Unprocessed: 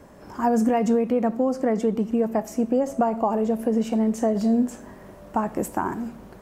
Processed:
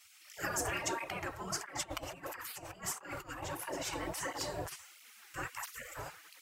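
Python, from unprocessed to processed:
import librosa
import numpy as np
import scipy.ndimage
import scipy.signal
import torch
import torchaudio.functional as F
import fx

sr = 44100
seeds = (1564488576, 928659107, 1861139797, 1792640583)

y = fx.over_compress(x, sr, threshold_db=-26.0, ratio=-0.5, at=(1.52, 3.43))
y = fx.spec_gate(y, sr, threshold_db=-25, keep='weak')
y = fx.flanger_cancel(y, sr, hz=1.5, depth_ms=5.7)
y = y * librosa.db_to_amplitude(8.0)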